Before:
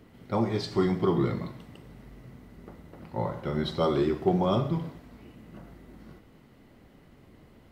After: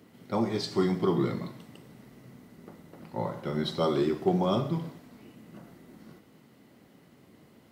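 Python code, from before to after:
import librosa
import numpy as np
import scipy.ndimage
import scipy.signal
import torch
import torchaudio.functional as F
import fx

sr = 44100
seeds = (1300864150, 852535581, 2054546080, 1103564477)

y = scipy.signal.sosfilt(scipy.signal.butter(2, 170.0, 'highpass', fs=sr, output='sos'), x)
y = fx.bass_treble(y, sr, bass_db=4, treble_db=6)
y = y * 10.0 ** (-1.5 / 20.0)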